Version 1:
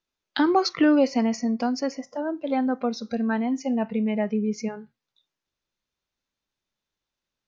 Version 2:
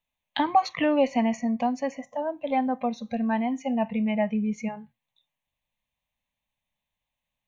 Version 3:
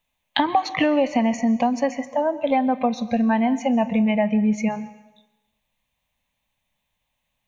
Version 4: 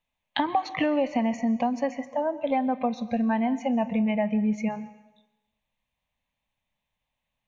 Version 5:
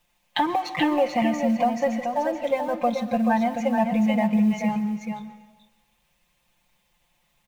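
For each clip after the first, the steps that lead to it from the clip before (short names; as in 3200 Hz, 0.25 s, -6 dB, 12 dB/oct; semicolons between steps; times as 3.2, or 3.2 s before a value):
fixed phaser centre 1400 Hz, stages 6; gain +3.5 dB
compressor, threshold -25 dBFS, peak gain reduction 10 dB; reverb RT60 0.95 s, pre-delay 0.117 s, DRR 16 dB; gain +9 dB
high shelf 5700 Hz -9.5 dB; gain -5 dB
G.711 law mismatch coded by mu; comb 5.7 ms, depth 82%; echo 0.432 s -6 dB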